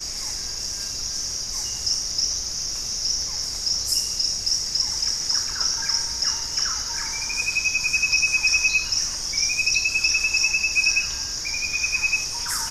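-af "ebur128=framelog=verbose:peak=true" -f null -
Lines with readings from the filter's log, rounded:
Integrated loudness:
  I:         -21.2 LUFS
  Threshold: -31.2 LUFS
Loudness range:
  LRA:         4.6 LU
  Threshold: -40.9 LUFS
  LRA low:   -23.5 LUFS
  LRA high:  -18.9 LUFS
True peak:
  Peak:       -7.4 dBFS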